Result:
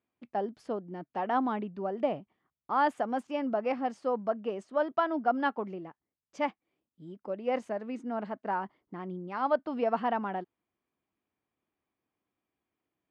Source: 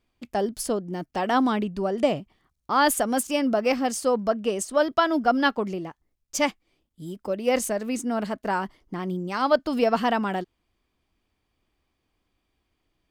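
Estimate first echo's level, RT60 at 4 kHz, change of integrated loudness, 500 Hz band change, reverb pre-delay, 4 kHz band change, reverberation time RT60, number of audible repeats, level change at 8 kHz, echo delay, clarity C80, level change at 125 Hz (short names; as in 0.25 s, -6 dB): none, none, -7.5 dB, -7.0 dB, none, -16.5 dB, none, none, under -30 dB, none, none, -10.0 dB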